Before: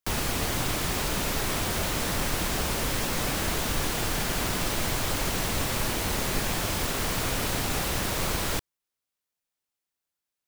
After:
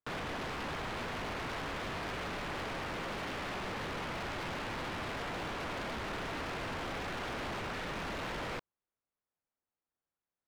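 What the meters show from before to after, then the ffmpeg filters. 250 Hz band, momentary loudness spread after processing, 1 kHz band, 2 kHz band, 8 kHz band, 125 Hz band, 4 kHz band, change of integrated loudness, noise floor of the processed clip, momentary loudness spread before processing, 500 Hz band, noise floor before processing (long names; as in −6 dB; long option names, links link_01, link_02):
−9.5 dB, 0 LU, −6.5 dB, −7.0 dB, −23.0 dB, −13.0 dB, −12.5 dB, −11.0 dB, below −85 dBFS, 0 LU, −7.5 dB, below −85 dBFS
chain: -af "lowpass=1400,aeval=exprs='0.02*(abs(mod(val(0)/0.02+3,4)-2)-1)':channel_layout=same"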